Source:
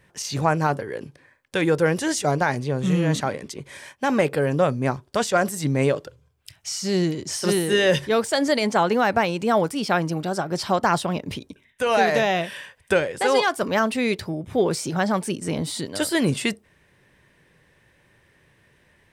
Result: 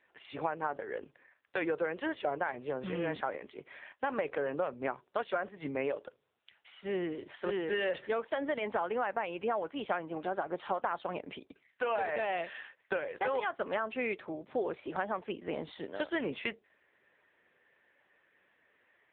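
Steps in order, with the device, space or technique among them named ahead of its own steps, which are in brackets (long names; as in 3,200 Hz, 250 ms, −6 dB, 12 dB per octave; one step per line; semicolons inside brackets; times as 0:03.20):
high-pass filter 45 Hz 12 dB per octave
voicemail (band-pass filter 410–2,900 Hz; downward compressor 8 to 1, threshold −24 dBFS, peak gain reduction 10 dB; level −4 dB; AMR narrowband 6.7 kbit/s 8,000 Hz)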